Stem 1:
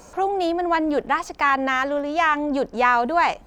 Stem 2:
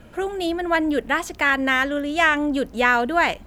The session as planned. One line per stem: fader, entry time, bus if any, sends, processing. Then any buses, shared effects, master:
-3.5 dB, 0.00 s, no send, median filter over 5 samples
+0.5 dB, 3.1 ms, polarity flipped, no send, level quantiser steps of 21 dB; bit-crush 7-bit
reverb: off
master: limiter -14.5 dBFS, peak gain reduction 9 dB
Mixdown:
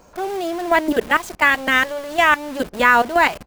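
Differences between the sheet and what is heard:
stem 2 +0.5 dB -> +6.5 dB; master: missing limiter -14.5 dBFS, peak gain reduction 9 dB

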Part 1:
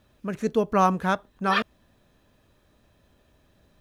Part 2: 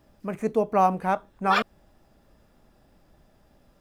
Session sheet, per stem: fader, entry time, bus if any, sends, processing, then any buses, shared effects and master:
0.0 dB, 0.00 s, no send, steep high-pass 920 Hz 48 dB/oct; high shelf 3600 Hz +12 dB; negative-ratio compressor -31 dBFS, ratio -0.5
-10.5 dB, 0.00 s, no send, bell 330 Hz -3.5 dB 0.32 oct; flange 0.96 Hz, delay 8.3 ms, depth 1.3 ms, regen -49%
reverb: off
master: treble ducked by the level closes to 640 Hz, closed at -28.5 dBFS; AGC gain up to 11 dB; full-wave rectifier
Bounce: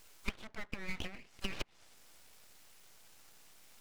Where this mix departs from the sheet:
stem 2 -10.5 dB -> -20.5 dB; master: missing AGC gain up to 11 dB

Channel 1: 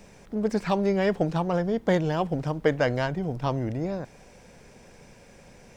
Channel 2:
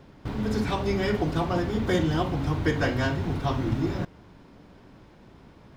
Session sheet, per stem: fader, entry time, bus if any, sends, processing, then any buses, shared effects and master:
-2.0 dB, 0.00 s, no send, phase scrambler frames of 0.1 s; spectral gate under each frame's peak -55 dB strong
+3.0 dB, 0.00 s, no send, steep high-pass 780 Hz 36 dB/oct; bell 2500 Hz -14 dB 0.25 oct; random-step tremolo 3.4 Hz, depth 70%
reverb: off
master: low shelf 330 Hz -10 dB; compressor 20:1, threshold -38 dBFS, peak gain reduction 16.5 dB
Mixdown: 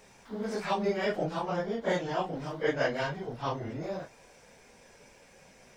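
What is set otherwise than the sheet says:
stem 2 +3.0 dB -> -9.0 dB; master: missing compressor 20:1, threshold -38 dBFS, peak gain reduction 16.5 dB

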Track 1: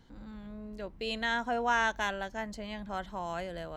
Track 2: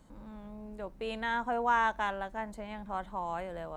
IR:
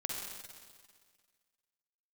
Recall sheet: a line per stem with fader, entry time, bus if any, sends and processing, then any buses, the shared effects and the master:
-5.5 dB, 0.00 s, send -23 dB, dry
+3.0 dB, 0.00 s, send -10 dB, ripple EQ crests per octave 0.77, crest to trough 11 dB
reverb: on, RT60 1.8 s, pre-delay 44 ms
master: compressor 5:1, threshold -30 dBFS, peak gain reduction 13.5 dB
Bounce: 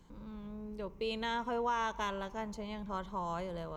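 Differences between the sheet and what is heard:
stem 2 +3.0 dB -> -6.5 dB; reverb return -7.0 dB

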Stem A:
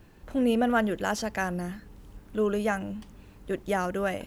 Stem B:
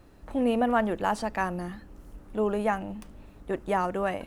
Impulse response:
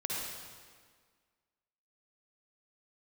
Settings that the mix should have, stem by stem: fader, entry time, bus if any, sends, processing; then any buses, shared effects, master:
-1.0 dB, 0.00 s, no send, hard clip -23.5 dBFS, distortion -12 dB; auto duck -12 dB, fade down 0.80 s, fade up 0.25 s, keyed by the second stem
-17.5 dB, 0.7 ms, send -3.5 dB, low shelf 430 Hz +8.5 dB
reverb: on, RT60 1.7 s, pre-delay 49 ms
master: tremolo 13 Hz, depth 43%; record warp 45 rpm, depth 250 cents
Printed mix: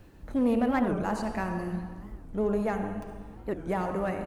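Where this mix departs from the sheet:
stem B -17.5 dB -> -11.0 dB; master: missing tremolo 13 Hz, depth 43%

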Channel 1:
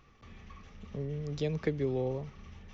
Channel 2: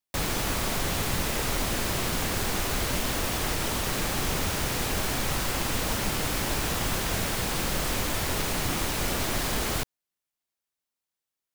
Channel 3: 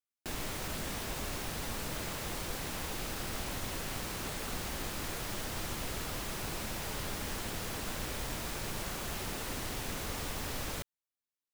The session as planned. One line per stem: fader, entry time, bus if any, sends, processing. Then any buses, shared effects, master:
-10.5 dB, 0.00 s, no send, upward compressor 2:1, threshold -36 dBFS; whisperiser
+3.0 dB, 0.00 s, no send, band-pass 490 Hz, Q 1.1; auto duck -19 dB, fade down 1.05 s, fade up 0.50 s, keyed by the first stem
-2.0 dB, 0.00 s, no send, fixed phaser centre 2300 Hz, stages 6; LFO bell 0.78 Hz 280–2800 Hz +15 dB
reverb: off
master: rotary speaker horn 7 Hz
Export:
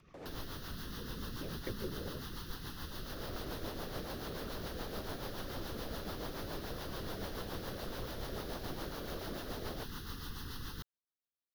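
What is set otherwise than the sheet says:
stem 2 +3.0 dB -> -7.0 dB; stem 3: missing LFO bell 0.78 Hz 280–2800 Hz +15 dB

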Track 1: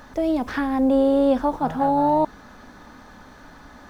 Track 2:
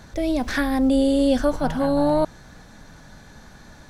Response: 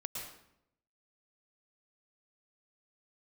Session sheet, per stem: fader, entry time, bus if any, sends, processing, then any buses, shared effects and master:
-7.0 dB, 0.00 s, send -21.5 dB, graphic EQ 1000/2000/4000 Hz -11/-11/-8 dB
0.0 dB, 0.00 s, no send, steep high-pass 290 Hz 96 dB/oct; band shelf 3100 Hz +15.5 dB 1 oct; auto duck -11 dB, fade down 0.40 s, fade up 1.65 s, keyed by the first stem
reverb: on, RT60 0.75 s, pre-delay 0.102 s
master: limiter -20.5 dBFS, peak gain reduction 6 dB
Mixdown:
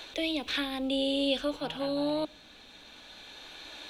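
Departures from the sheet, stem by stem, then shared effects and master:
stem 1 -7.0 dB -> -15.0 dB; master: missing limiter -20.5 dBFS, peak gain reduction 6 dB

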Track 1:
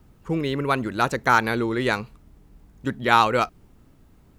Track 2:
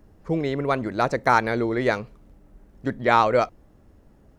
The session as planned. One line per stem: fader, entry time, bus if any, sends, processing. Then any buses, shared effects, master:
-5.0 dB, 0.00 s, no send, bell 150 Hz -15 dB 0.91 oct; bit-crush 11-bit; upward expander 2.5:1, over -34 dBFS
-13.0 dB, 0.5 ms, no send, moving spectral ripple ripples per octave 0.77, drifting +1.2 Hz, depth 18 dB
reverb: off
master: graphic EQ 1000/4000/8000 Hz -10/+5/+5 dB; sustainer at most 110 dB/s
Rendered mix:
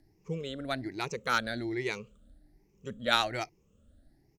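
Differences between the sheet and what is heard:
stem 2: polarity flipped; master: missing sustainer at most 110 dB/s

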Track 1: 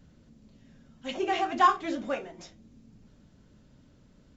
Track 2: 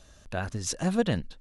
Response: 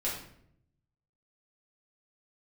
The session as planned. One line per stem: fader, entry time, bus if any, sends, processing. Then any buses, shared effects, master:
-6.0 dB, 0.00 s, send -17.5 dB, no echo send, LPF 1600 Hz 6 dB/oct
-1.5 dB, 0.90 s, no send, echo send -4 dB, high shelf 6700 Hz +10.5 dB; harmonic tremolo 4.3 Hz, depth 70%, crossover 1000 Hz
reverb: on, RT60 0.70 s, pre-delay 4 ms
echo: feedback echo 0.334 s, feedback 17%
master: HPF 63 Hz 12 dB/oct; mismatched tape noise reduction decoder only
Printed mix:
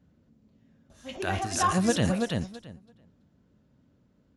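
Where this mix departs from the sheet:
stem 1: missing LPF 1600 Hz 6 dB/oct; stem 2 -1.5 dB -> +4.5 dB

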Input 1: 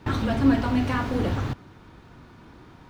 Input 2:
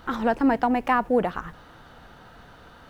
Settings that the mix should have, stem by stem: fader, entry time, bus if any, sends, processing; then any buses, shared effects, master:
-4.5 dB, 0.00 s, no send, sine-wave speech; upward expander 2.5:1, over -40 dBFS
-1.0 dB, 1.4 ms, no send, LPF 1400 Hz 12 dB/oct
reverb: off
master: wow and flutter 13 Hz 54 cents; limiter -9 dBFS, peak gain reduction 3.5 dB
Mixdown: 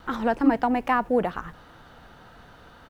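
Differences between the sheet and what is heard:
stem 2: missing LPF 1400 Hz 12 dB/oct; master: missing wow and flutter 13 Hz 54 cents

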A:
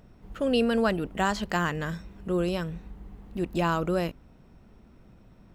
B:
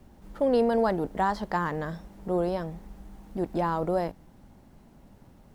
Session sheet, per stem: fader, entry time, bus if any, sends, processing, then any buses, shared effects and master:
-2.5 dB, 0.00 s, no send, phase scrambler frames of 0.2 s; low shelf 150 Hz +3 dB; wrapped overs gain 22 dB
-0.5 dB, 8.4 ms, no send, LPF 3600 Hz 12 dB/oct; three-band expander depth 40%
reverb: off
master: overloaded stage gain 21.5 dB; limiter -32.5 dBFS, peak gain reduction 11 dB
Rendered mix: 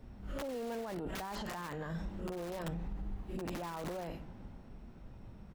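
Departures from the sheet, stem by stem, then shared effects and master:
stem B -0.5 dB -> +7.0 dB; master: missing overloaded stage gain 21.5 dB

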